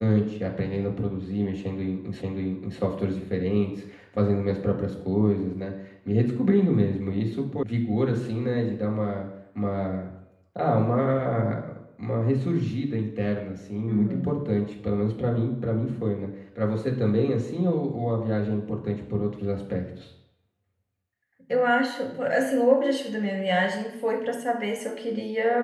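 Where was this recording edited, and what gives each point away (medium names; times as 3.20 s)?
2.22 s: repeat of the last 0.58 s
7.63 s: sound stops dead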